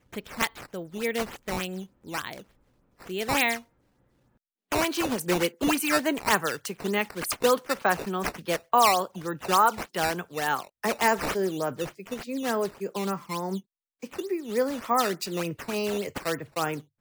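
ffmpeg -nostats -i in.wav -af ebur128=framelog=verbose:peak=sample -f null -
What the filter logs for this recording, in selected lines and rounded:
Integrated loudness:
  I:         -27.5 LUFS
  Threshold: -38.0 LUFS
Loudness range:
  LRA:         6.6 LU
  Threshold: -47.7 LUFS
  LRA low:   -31.6 LUFS
  LRA high:  -25.1 LUFS
Sample peak:
  Peak:       -9.0 dBFS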